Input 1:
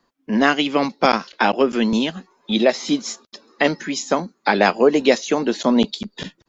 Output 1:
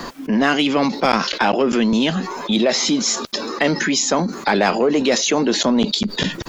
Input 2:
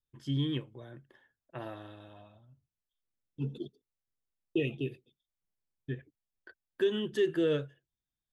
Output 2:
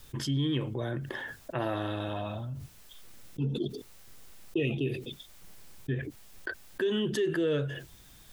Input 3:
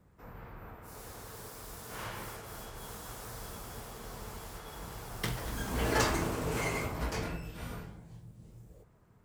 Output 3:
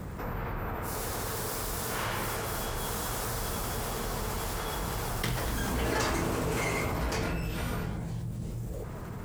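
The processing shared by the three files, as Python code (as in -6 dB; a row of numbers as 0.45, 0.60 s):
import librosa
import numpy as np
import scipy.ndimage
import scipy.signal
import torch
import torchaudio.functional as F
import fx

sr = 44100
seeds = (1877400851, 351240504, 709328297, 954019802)

p1 = 10.0 ** (-15.0 / 20.0) * np.tanh(x / 10.0 ** (-15.0 / 20.0))
p2 = x + (p1 * 10.0 ** (-3.5 / 20.0))
p3 = fx.env_flatten(p2, sr, amount_pct=70)
y = p3 * 10.0 ** (-6.5 / 20.0)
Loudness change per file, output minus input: +1.0, +1.0, +4.5 LU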